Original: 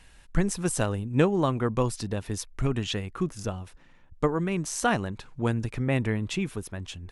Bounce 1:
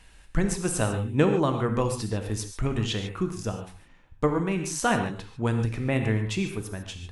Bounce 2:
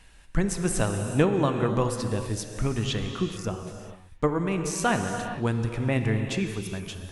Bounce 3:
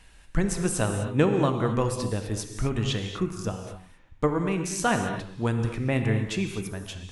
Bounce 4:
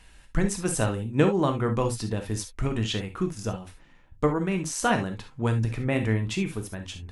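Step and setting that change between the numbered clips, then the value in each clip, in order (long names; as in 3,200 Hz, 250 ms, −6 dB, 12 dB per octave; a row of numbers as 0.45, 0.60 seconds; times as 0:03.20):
reverb whose tail is shaped and stops, gate: 170, 470, 280, 90 milliseconds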